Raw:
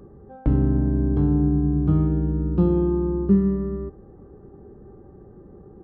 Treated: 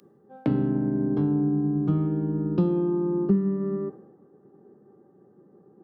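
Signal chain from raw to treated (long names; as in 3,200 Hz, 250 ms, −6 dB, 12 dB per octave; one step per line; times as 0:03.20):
high-pass filter 150 Hz 24 dB per octave
downward compressor 5 to 1, threshold −29 dBFS, peak gain reduction 14 dB
multiband upward and downward expander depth 100%
level +7 dB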